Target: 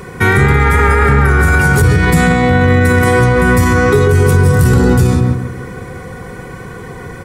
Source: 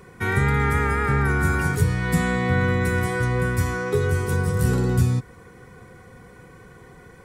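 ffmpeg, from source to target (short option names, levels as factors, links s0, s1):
-filter_complex "[0:a]acontrast=90,asplit=2[s0][s1];[s1]adelay=142,lowpass=f=1400:p=1,volume=0.668,asplit=2[s2][s3];[s3]adelay=142,lowpass=f=1400:p=1,volume=0.39,asplit=2[s4][s5];[s5]adelay=142,lowpass=f=1400:p=1,volume=0.39,asplit=2[s6][s7];[s7]adelay=142,lowpass=f=1400:p=1,volume=0.39,asplit=2[s8][s9];[s9]adelay=142,lowpass=f=1400:p=1,volume=0.39[s10];[s0][s2][s4][s6][s8][s10]amix=inputs=6:normalize=0,alimiter=level_in=3.16:limit=0.891:release=50:level=0:latency=1,volume=0.891"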